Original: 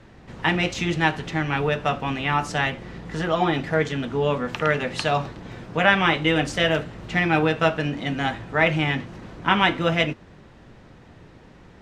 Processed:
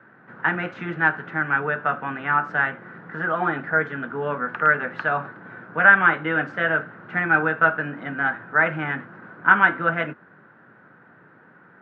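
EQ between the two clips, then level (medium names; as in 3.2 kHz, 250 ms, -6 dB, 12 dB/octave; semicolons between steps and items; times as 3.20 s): high-pass 140 Hz 24 dB/octave; resonant low-pass 1.5 kHz, resonance Q 7.1; -5.5 dB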